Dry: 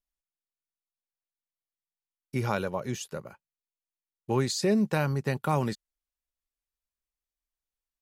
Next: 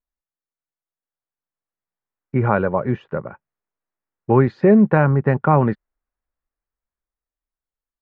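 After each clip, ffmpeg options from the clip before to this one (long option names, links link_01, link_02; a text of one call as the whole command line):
ffmpeg -i in.wav -af "lowpass=frequency=1800:width=0.5412,lowpass=frequency=1800:width=1.3066,dynaudnorm=framelen=220:gausssize=17:maxgain=11.5dB,volume=2dB" out.wav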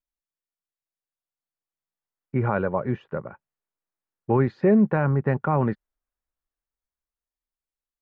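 ffmpeg -i in.wav -af "alimiter=limit=-5.5dB:level=0:latency=1:release=20,volume=-5dB" out.wav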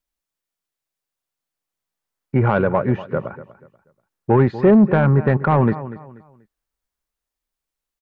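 ffmpeg -i in.wav -af "aecho=1:1:242|484|726:0.15|0.0449|0.0135,asoftclip=type=tanh:threshold=-13.5dB,volume=8dB" out.wav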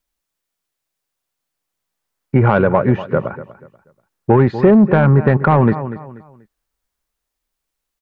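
ffmpeg -i in.wav -af "acompressor=threshold=-14dB:ratio=3,volume=6dB" out.wav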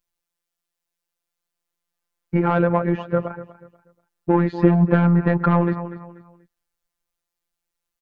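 ffmpeg -i in.wav -af "afftfilt=real='hypot(re,im)*cos(PI*b)':imag='0':win_size=1024:overlap=0.75,volume=-1.5dB" out.wav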